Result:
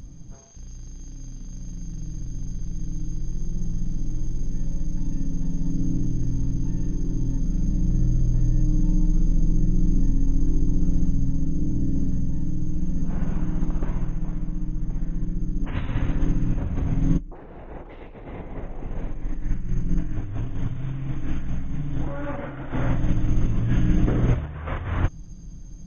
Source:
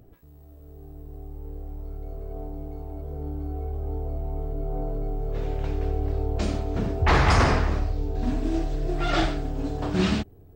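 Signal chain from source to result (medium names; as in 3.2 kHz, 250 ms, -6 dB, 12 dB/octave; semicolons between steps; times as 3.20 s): compressor with a negative ratio -29 dBFS, ratio -0.5; wide varispeed 0.408×; trim +8.5 dB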